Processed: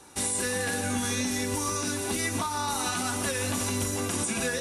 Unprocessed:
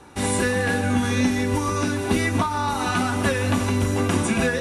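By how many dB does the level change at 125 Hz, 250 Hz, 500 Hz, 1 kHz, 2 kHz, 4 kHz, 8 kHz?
−11.0, −9.5, −8.0, −7.0, −7.0, −1.5, +3.5 decibels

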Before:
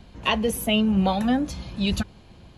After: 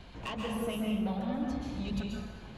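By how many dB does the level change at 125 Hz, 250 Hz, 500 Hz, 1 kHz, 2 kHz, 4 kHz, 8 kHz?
−10.0, −10.0, −10.5, −12.5, −14.0, −15.5, −16.0 decibels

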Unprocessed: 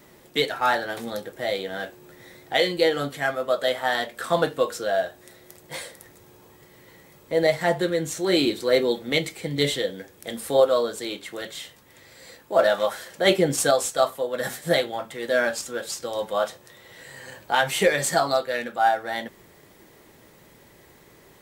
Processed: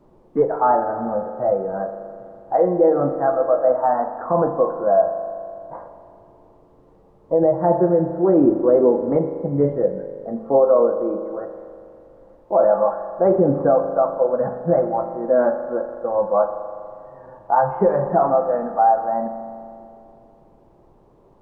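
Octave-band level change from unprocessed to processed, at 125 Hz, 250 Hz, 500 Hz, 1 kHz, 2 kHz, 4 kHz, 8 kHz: +6.0 dB, +7.5 dB, +6.0 dB, +6.0 dB, below −10 dB, below −40 dB, below −40 dB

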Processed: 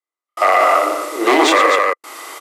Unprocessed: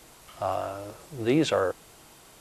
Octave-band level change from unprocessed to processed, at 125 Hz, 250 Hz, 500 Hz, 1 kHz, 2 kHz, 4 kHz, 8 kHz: below −20 dB, +7.5 dB, +12.0 dB, +20.5 dB, +21.0 dB, +15.5 dB, +15.5 dB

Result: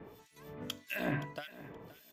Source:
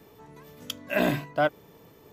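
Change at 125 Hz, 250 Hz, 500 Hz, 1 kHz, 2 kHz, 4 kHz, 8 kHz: −6.5, −10.0, −15.0, −15.0, −9.5, −7.5, −8.0 decibels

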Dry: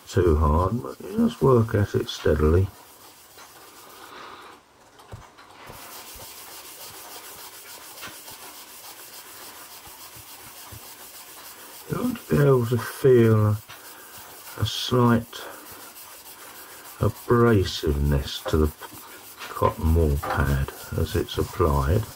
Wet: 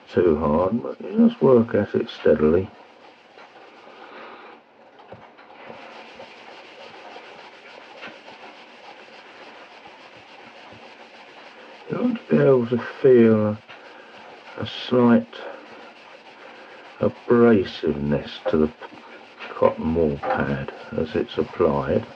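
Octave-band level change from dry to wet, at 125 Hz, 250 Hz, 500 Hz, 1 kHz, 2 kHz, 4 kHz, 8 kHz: −7.0 dB, +4.0 dB, +4.0 dB, 0.0 dB, +1.5 dB, −3.5 dB, below −20 dB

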